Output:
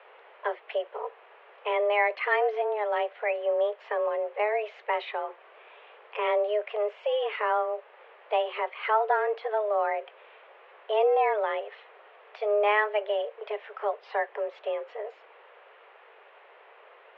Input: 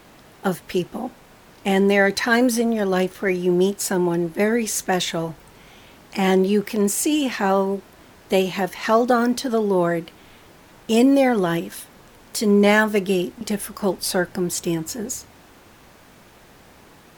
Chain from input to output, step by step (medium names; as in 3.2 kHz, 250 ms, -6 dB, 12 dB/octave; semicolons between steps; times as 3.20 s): in parallel at -2 dB: compression, threshold -31 dBFS, peak gain reduction 18.5 dB; on the sum: mistuned SSB +210 Hz 220–2800 Hz; trim -8 dB